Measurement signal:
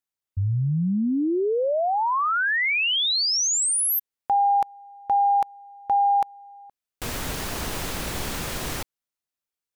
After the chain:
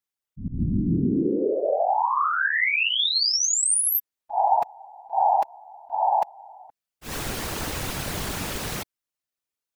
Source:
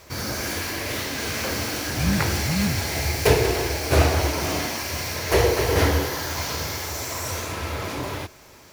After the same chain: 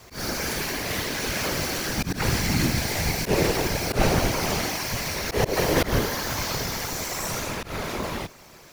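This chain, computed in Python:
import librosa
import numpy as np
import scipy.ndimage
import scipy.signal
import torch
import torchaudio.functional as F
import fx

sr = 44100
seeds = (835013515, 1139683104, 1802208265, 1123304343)

y = fx.whisperise(x, sr, seeds[0])
y = fx.auto_swell(y, sr, attack_ms=127.0)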